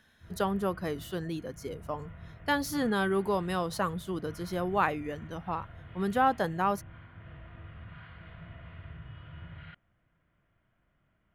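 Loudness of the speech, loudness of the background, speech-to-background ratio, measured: -31.5 LUFS, -49.0 LUFS, 17.5 dB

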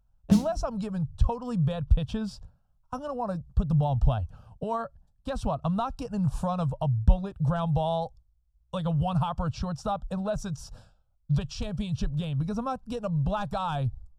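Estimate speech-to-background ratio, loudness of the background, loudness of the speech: -5.0 dB, -25.0 LUFS, -30.0 LUFS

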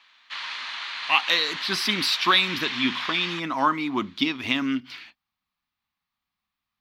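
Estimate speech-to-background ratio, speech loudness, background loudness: 7.5 dB, -23.5 LUFS, -31.0 LUFS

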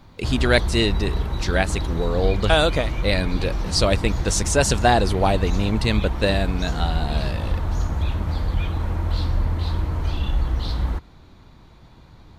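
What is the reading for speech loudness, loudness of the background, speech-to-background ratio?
-22.5 LUFS, -26.0 LUFS, 3.5 dB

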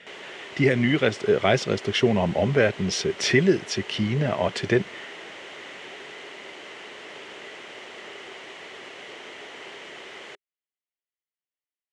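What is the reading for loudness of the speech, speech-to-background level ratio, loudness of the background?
-23.0 LUFS, 16.5 dB, -39.5 LUFS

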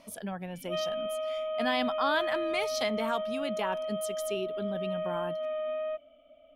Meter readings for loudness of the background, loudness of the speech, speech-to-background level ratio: -34.0 LUFS, -34.0 LUFS, 0.0 dB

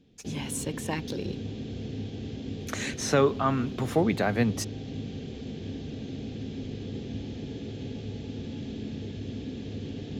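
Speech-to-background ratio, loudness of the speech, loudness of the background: 9.0 dB, -28.5 LUFS, -37.5 LUFS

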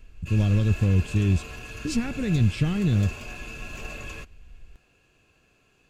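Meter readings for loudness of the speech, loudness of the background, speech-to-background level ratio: -24.5 LUFS, -38.5 LUFS, 14.0 dB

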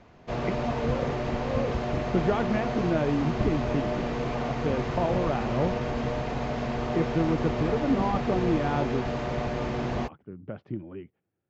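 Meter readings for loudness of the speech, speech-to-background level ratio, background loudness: -30.5 LUFS, -0.5 dB, -30.0 LUFS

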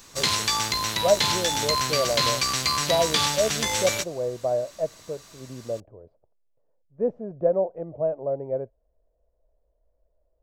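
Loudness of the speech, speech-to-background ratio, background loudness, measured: -28.0 LUFS, -4.5 dB, -23.5 LUFS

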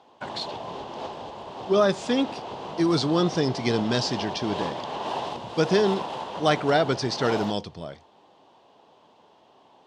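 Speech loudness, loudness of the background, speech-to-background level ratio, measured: -25.0 LUFS, -34.5 LUFS, 9.5 dB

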